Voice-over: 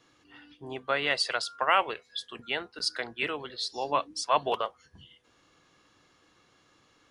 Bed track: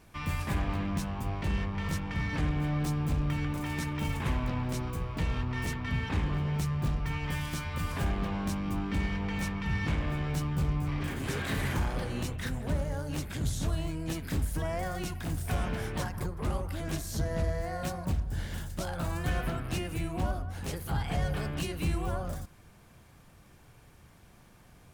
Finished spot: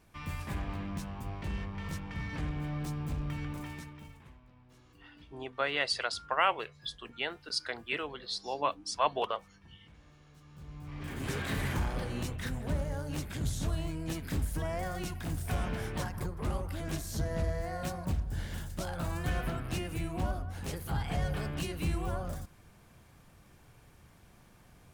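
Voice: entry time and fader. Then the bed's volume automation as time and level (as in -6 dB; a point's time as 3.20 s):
4.70 s, -3.5 dB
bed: 3.61 s -6 dB
4.41 s -28 dB
10.36 s -28 dB
11.22 s -2 dB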